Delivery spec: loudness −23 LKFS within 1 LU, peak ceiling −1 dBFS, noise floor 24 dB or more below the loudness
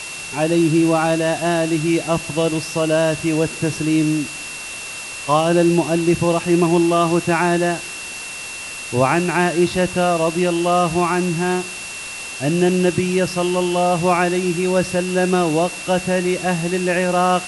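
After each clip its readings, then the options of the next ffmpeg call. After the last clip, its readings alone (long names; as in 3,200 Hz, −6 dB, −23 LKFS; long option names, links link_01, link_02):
interfering tone 2,700 Hz; level of the tone −31 dBFS; background noise floor −31 dBFS; target noise floor −43 dBFS; integrated loudness −18.5 LKFS; sample peak −3.5 dBFS; target loudness −23.0 LKFS
→ -af "bandreject=frequency=2700:width=30"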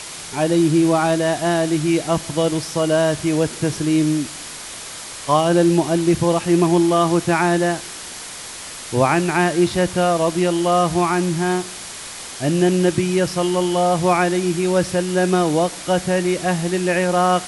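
interfering tone none found; background noise floor −34 dBFS; target noise floor −43 dBFS
→ -af "afftdn=noise_reduction=9:noise_floor=-34"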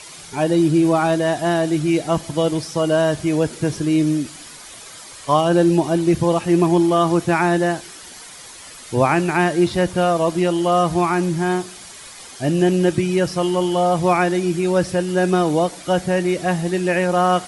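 background noise floor −39 dBFS; target noise floor −43 dBFS
→ -af "afftdn=noise_reduction=6:noise_floor=-39"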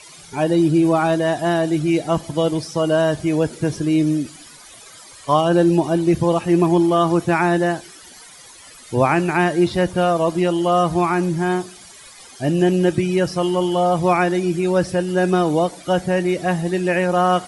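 background noise floor −43 dBFS; integrated loudness −18.5 LKFS; sample peak −4.0 dBFS; target loudness −23.0 LKFS
→ -af "volume=-4.5dB"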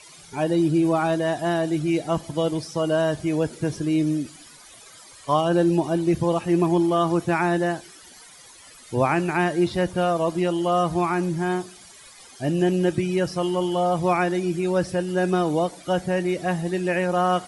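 integrated loudness −23.0 LKFS; sample peak −8.5 dBFS; background noise floor −47 dBFS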